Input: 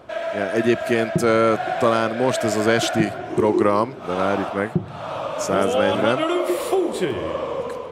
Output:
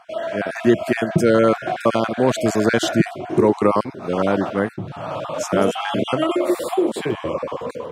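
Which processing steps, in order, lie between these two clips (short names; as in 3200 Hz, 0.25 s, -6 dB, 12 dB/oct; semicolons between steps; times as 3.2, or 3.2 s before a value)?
random spectral dropouts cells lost 24%; HPF 110 Hz 12 dB/oct; low shelf 360 Hz +7 dB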